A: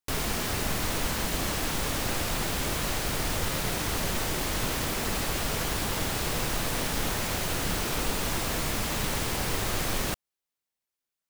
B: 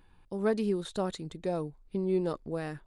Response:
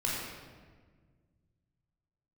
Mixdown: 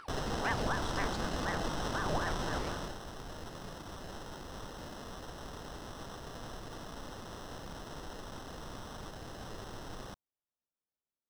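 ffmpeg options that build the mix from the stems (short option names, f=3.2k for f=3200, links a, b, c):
-filter_complex "[0:a]acrusher=samples=19:mix=1:aa=0.000001,volume=-6.5dB,afade=t=out:st=2.55:d=0.45:silence=0.334965[a];[1:a]acompressor=mode=upward:threshold=-34dB:ratio=2.5,aeval=exprs='val(0)*sin(2*PI*800*n/s+800*0.75/4*sin(2*PI*4*n/s))':c=same,volume=-4.5dB[b];[a][b]amix=inputs=2:normalize=0,acrossover=split=8800[c][d];[d]acompressor=threshold=-58dB:ratio=4:attack=1:release=60[e];[c][e]amix=inputs=2:normalize=0,equalizer=f=5.1k:w=2.9:g=7"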